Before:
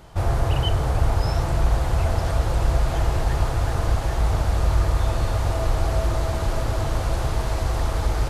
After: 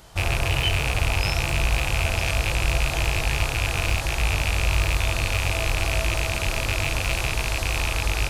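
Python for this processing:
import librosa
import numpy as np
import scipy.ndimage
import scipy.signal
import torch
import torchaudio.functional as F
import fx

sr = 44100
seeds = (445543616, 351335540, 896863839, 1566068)

y = fx.rattle_buzz(x, sr, strikes_db=-25.0, level_db=-15.0)
y = fx.high_shelf(y, sr, hz=2300.0, db=11.5)
y = fx.doubler(y, sr, ms=21.0, db=-12)
y = y * librosa.db_to_amplitude(-4.0)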